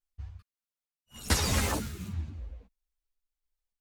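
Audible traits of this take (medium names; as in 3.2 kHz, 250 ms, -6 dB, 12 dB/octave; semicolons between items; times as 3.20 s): random-step tremolo; a shimmering, thickened sound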